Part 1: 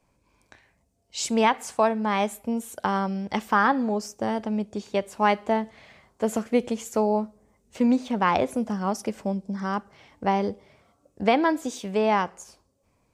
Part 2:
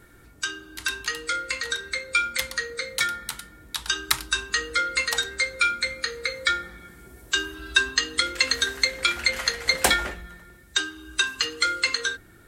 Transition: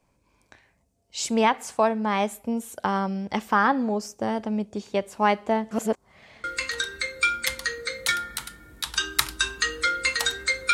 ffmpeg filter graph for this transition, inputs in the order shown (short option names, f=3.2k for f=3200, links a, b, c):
-filter_complex "[0:a]apad=whole_dur=10.73,atrim=end=10.73,asplit=2[a][b];[a]atrim=end=5.712[c];[b]atrim=start=5.708:end=6.442,asetpts=PTS-STARTPTS,areverse[d];[1:a]atrim=start=1.358:end=5.65[e];[c][d]acrossfade=d=0.004:c1=hsin:c2=hsin[f];[f][e]acrossfade=d=0.004:c1=hsin:c2=hsin"